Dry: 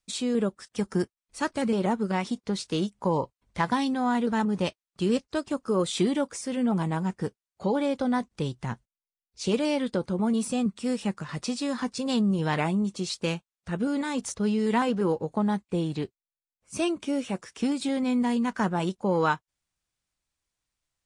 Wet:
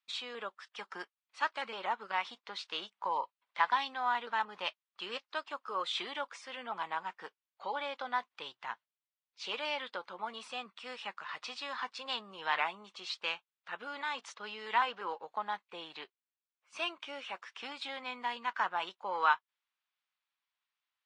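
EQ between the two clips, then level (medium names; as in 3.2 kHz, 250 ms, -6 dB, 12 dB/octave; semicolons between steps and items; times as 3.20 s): Chebyshev band-pass 980–3400 Hz, order 2; 0.0 dB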